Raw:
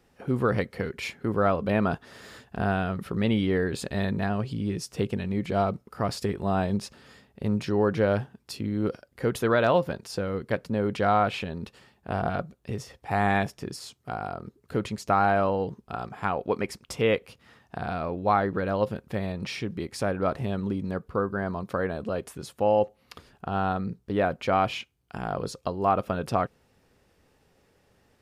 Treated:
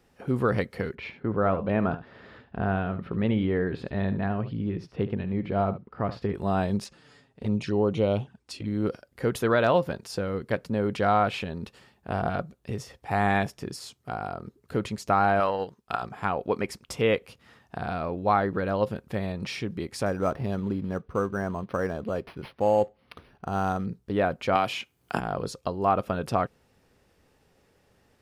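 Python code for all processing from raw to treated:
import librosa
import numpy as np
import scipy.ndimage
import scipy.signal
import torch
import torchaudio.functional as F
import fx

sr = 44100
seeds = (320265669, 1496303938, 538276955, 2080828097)

y = fx.chain(x, sr, fx.air_absorb(metres=350.0),
    fx.echo_single(ms=72, db=-13.5), at=(0.95, 6.34))
y = fx.chain(y, sr, fx.lowpass(hz=10000.0, slope=24),
    fx.dynamic_eq(hz=2800.0, q=0.89, threshold_db=-46.0, ratio=4.0, max_db=4),
    fx.env_flanger(rest_ms=8.3, full_db=-22.5), at=(6.84, 8.67))
y = fx.chain(y, sr, fx.transient(attack_db=4, sustain_db=-9),
    fx.tilt_shelf(db=-6.0, hz=640.0), at=(15.4, 16.02))
y = fx.chain(y, sr, fx.quant_float(bits=4),
    fx.resample_linear(factor=6), at=(20.06, 23.86))
y = fx.chain(y, sr, fx.highpass(hz=180.0, slope=6),
    fx.high_shelf(hz=6900.0, db=6.5),
    fx.band_squash(depth_pct=100), at=(24.55, 25.2))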